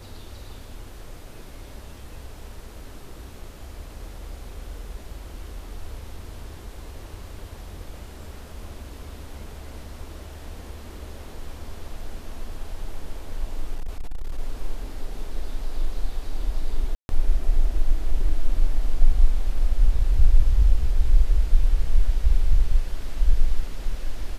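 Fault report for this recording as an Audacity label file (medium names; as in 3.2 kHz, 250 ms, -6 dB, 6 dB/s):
13.750000	14.390000	clipped -23.5 dBFS
16.950000	17.090000	dropout 141 ms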